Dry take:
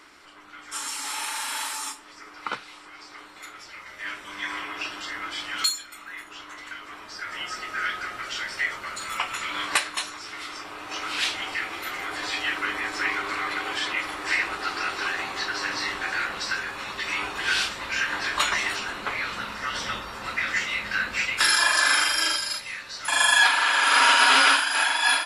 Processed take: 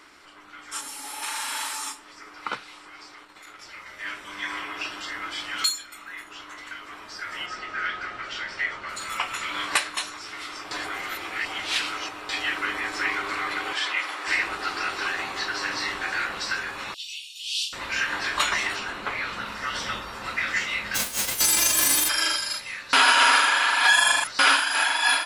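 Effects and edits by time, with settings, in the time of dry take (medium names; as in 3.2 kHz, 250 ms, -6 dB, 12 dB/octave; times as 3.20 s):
0.81–1.23 s: time-frequency box 870–9100 Hz -7 dB
3.10–3.62 s: transformer saturation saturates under 1.6 kHz
7.46–8.89 s: distance through air 100 m
10.71–12.29 s: reverse
13.73–14.28 s: frequency weighting A
16.94–17.73 s: steep high-pass 2.8 kHz 72 dB/octave
18.67–19.46 s: treble shelf 4.8 kHz -4.5 dB
20.94–22.08 s: formants flattened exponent 0.1
22.93–24.39 s: reverse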